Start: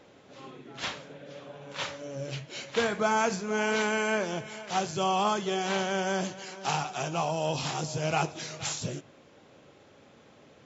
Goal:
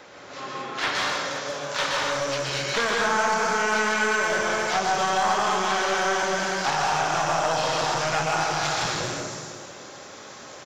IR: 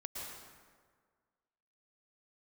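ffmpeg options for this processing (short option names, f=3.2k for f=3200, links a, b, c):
-filter_complex "[1:a]atrim=start_sample=2205[a];[0:a][a]afir=irnorm=-1:irlink=0,acrossover=split=690|4200[b][c][d];[b]acompressor=threshold=-37dB:ratio=4[e];[c]acompressor=threshold=-40dB:ratio=4[f];[d]acompressor=threshold=-59dB:ratio=4[g];[e][f][g]amix=inputs=3:normalize=0,aeval=exprs='clip(val(0),-1,0.0106)':c=same,asetnsamples=n=441:p=0,asendcmd='0.95 highshelf g 14',highshelf=f=3.9k:t=q:w=1.5:g=6.5,aecho=1:1:512:0.1,acrossover=split=4200[h][i];[i]acompressor=threshold=-47dB:ratio=4:attack=1:release=60[j];[h][j]amix=inputs=2:normalize=0,equalizer=f=1.6k:w=0.43:g=15,volume=6dB"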